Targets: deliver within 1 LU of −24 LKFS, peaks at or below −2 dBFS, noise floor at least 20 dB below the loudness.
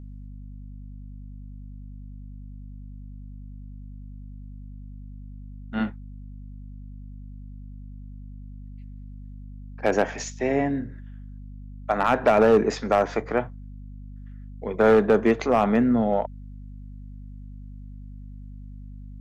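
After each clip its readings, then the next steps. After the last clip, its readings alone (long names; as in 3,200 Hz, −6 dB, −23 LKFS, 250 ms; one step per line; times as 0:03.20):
share of clipped samples 0.3%; peaks flattened at −11.0 dBFS; mains hum 50 Hz; hum harmonics up to 250 Hz; level of the hum −37 dBFS; integrated loudness −22.5 LKFS; sample peak −11.0 dBFS; target loudness −24.0 LKFS
→ clipped peaks rebuilt −11 dBFS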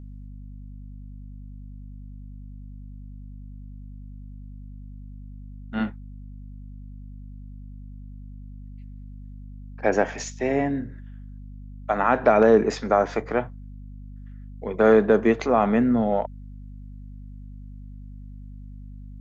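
share of clipped samples 0.0%; mains hum 50 Hz; hum harmonics up to 250 Hz; level of the hum −37 dBFS
→ hum removal 50 Hz, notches 5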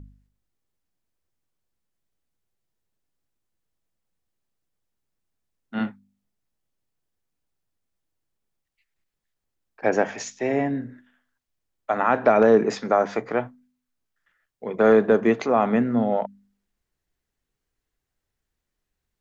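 mains hum none found; integrated loudness −22.0 LKFS; sample peak −5.5 dBFS; target loudness −24.0 LKFS
→ level −2 dB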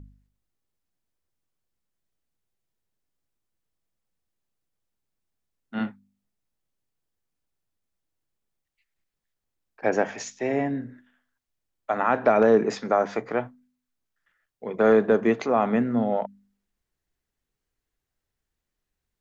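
integrated loudness −24.0 LKFS; sample peak −7.5 dBFS; background noise floor −84 dBFS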